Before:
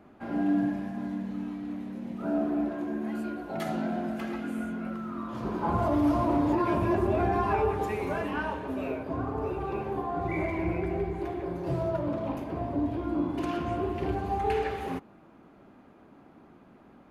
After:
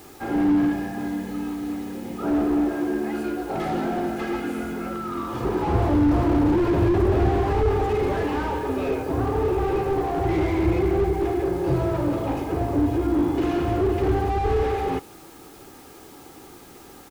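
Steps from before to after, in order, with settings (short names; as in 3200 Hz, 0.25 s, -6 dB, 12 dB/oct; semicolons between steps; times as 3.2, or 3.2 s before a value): comb 2.4 ms, depth 61%; in parallel at -7.5 dB: requantised 8-bit, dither triangular; on the sum: slew limiter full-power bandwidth 26 Hz; gain +5 dB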